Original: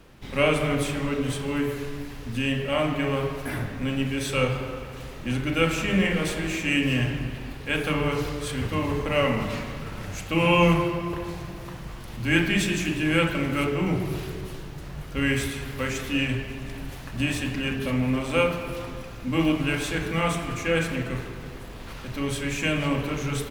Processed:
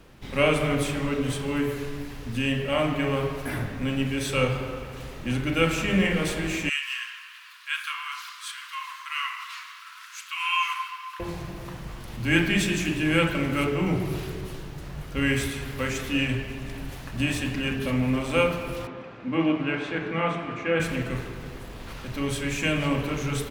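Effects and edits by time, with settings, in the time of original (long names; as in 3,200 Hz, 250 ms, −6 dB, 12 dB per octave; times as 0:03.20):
0:06.69–0:11.20: Chebyshev high-pass with heavy ripple 1,000 Hz, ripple 3 dB
0:18.87–0:20.80: band-pass filter 180–2,500 Hz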